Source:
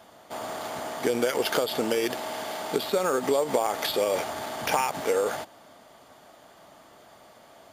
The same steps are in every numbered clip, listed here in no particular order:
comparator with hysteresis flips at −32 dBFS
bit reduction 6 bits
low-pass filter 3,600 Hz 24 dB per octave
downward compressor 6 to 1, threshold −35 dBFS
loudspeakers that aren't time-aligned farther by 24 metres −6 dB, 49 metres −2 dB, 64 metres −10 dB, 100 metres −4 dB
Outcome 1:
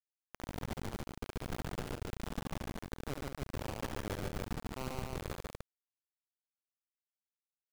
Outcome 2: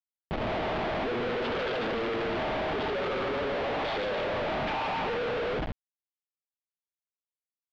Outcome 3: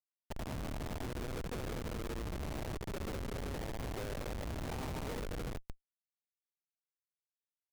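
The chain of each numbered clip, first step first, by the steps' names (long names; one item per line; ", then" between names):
low-pass filter, then downward compressor, then comparator with hysteresis, then bit reduction, then loudspeakers that aren't time-aligned
loudspeakers that aren't time-aligned, then comparator with hysteresis, then downward compressor, then bit reduction, then low-pass filter
low-pass filter, then bit reduction, then loudspeakers that aren't time-aligned, then downward compressor, then comparator with hysteresis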